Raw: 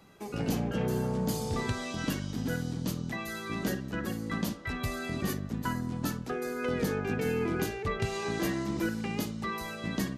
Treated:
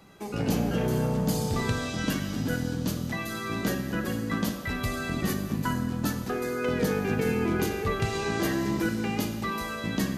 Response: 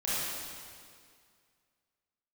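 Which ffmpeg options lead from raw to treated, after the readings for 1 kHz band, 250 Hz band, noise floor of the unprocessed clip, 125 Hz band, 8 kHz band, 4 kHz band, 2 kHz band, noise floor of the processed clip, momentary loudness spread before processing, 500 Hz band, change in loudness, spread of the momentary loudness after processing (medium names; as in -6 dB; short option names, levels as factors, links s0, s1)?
+4.0 dB, +4.5 dB, -41 dBFS, +4.0 dB, +4.0 dB, +4.5 dB, +4.0 dB, -35 dBFS, 5 LU, +3.5 dB, +4.0 dB, 4 LU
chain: -filter_complex "[0:a]asplit=2[s0][s1];[1:a]atrim=start_sample=2205[s2];[s1][s2]afir=irnorm=-1:irlink=0,volume=0.224[s3];[s0][s3]amix=inputs=2:normalize=0,volume=1.26"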